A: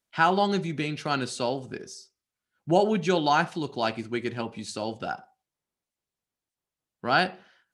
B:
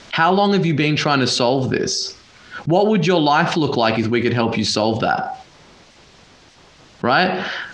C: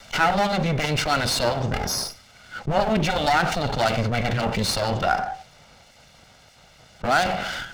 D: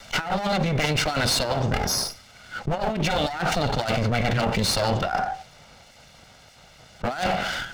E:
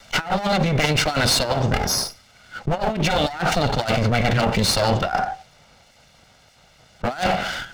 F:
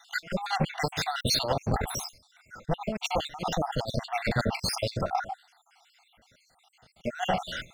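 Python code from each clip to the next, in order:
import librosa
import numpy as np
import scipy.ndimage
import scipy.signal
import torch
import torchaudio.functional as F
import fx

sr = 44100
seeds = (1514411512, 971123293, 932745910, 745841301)

y1 = scipy.signal.sosfilt(scipy.signal.butter(4, 5700.0, 'lowpass', fs=sr, output='sos'), x)
y1 = fx.env_flatten(y1, sr, amount_pct=70)
y1 = y1 * 10.0 ** (4.5 / 20.0)
y2 = fx.lower_of_two(y1, sr, delay_ms=1.4)
y2 = y2 * 10.0 ** (-2.5 / 20.0)
y3 = fx.over_compress(y2, sr, threshold_db=-23.0, ratio=-0.5)
y4 = fx.upward_expand(y3, sr, threshold_db=-36.0, expansion=1.5)
y4 = y4 * 10.0 ** (4.5 / 20.0)
y5 = fx.spec_dropout(y4, sr, seeds[0], share_pct=65)
y5 = y5 * 10.0 ** (-4.5 / 20.0)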